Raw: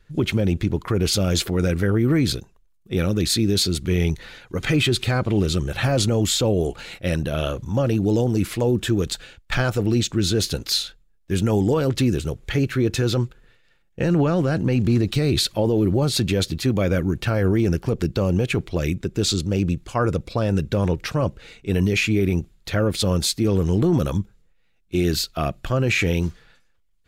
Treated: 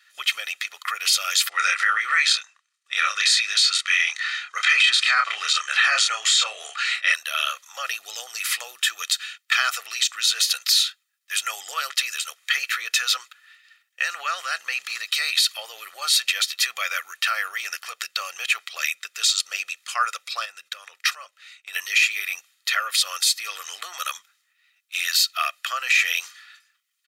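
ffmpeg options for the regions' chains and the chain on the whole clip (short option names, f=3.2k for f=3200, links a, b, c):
-filter_complex "[0:a]asettb=1/sr,asplit=3[a][b][c];[a]atrim=end=1.494[d];[b]atrim=start=1.49:end=7.14,asetpts=PTS-STARTPTS,afade=t=in:d=0.004:c=qsin,afade=t=out:st=5.646:d=0.004:c=qsin,lowpass=f=8.5k:w=0.5412,lowpass=f=8.5k:w=1.3066,asplit=2[e][f];[f]adelay=28,volume=-5dB[g];[e][g]amix=inputs=2:normalize=0,atrim=end_sample=249165,adynamicequalizer=threshold=0.01:dfrequency=1500:dqfactor=0.83:tfrequency=1500:tqfactor=0.83:attack=5:release=100:ratio=0.375:range=3.5:mode=boostabove:tftype=bell[h];[c]atrim=start=7.136[i];[d][h]acrossfade=d=0.004:c1=hsin:c2=qsin[j];[j][i]acrossfade=d=0.004:c1=qsin:c2=hsin,asettb=1/sr,asplit=3[k][l][m];[k]atrim=end=20.454[n];[l]atrim=start=20.45:end=21.73,asetpts=PTS-STARTPTS,afade=t=in:d=0.004:c=qsin,afade=t=out:st=1.276:d=0.004:c=qsin,lowshelf=f=380:g=6.5,acompressor=threshold=-22dB:ratio=10:attack=3.2:release=140:knee=1:detection=peak,agate=range=-10dB:threshold=-33dB:ratio=16:release=100:detection=peak[o];[m]atrim=start=21.726[p];[n][o]acrossfade=d=0.004:c1=hsin:c2=qsin[q];[q][p]acrossfade=d=0.004:c1=qsin:c2=hsin,highpass=f=1.4k:w=0.5412,highpass=f=1.4k:w=1.3066,aecho=1:1:1.6:0.56,alimiter=level_in=16.5dB:limit=-1dB:release=50:level=0:latency=1,volume=-7.5dB"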